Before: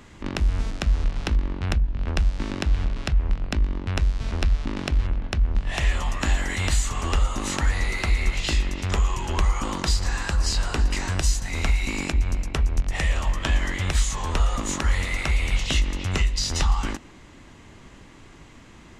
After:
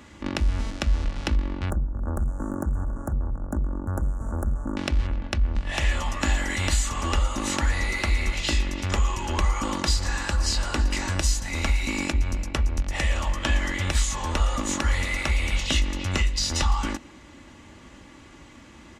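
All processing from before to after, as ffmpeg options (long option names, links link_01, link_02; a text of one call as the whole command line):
ffmpeg -i in.wav -filter_complex "[0:a]asettb=1/sr,asplit=3[link_01][link_02][link_03];[link_01]atrim=end=1.704[link_04];[link_02]atrim=start=1.7:end=4.77,asetpts=PTS-STARTPTS,afade=type=in:duration=0.004:curve=qsin,afade=type=out:start_time=3.066:duration=0.004:curve=qsin,volume=19.5dB,asoftclip=hard,volume=-19.5dB,asuperstop=centerf=3300:order=12:qfactor=0.61[link_05];[link_03]atrim=start=4.766[link_06];[link_04][link_05]acrossfade=duration=0.004:curve1=hsin:curve2=qsin[link_07];[link_07][link_06]acrossfade=duration=0.004:curve1=qsin:curve2=hsin,highpass=50,aecho=1:1:3.5:0.39" out.wav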